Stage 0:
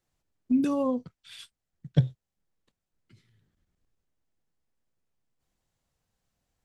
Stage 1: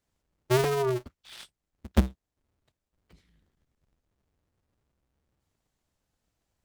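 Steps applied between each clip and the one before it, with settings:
sub-harmonics by changed cycles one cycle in 2, inverted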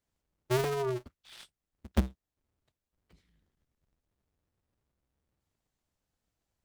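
stylus tracing distortion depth 0.054 ms
level −5 dB

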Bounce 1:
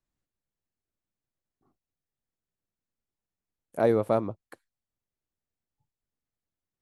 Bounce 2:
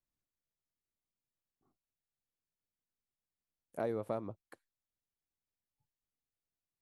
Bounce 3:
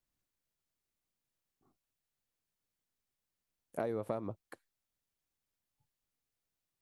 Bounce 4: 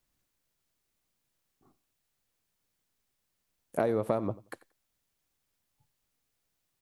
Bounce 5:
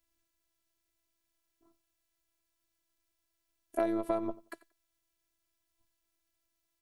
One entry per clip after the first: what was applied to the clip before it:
downward compressor 3 to 1, threshold −26 dBFS, peak gain reduction 7 dB; level −7.5 dB
downward compressor, threshold −36 dBFS, peak gain reduction 6 dB; level +4.5 dB
repeating echo 90 ms, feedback 18%, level −19.5 dB; level +8 dB
phases set to zero 335 Hz

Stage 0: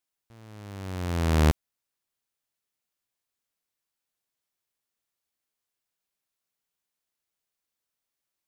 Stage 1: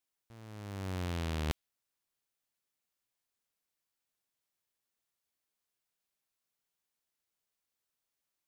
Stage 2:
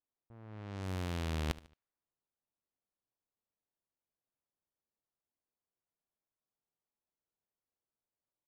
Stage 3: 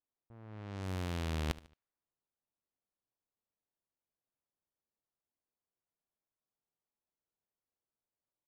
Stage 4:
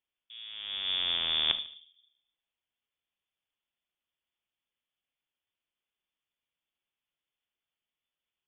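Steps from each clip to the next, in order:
dynamic equaliser 3,200 Hz, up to +6 dB, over −48 dBFS, Q 1.1; reversed playback; downward compressor 10 to 1, threshold −30 dBFS, peak gain reduction 14 dB; reversed playback; level −2 dB
repeating echo 74 ms, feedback 39%, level −18 dB; low-pass that shuts in the quiet parts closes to 910 Hz, open at −35 dBFS; level −1 dB
no processing that can be heard
on a send at −10 dB: convolution reverb RT60 0.60 s, pre-delay 7 ms; on the sum: voice inversion scrambler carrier 3,500 Hz; level +5.5 dB

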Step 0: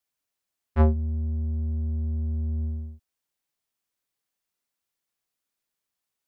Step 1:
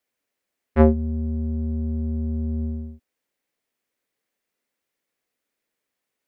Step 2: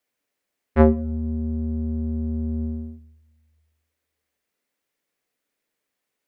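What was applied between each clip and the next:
octave-band graphic EQ 250/500/2,000 Hz +8/+10/+8 dB
rectangular room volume 2,800 cubic metres, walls furnished, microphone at 0.38 metres; level +1 dB

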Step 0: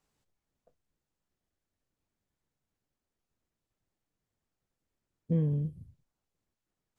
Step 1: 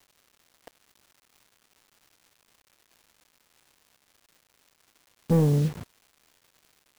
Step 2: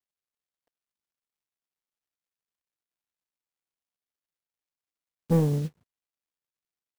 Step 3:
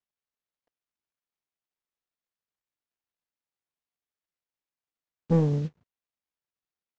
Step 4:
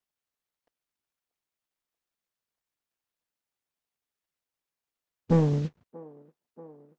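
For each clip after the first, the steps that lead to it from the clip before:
mid-hump overdrive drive 20 dB, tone 1,000 Hz, clips at −19 dBFS; bit-depth reduction 8 bits, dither none; surface crackle 380 per second −55 dBFS; level +7.5 dB
expander for the loud parts 2.5 to 1, over −40 dBFS
Butterworth low-pass 7,400 Hz 48 dB per octave; high-shelf EQ 5,200 Hz −10 dB
harmonic and percussive parts rebalanced percussive +5 dB; delay with a band-pass on its return 634 ms, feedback 76%, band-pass 580 Hz, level −18 dB

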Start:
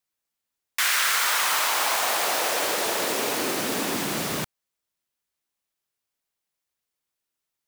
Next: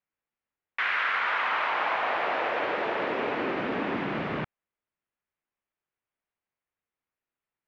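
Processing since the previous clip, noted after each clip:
low-pass filter 2,500 Hz 24 dB per octave
level −1 dB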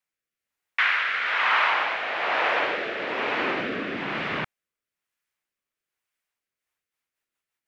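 tilt shelving filter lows −5.5 dB
rotating-speaker cabinet horn 1.1 Hz, later 6 Hz, at 0:06.34
level +5 dB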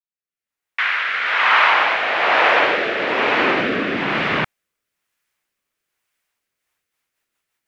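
fade in at the beginning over 1.90 s
level +9 dB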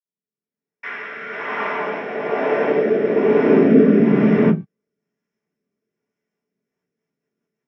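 speech leveller 2 s
convolution reverb, pre-delay 46 ms
level −6.5 dB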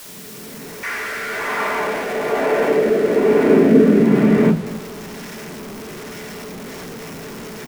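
converter with a step at zero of −26 dBFS
single-tap delay 247 ms −16.5 dB

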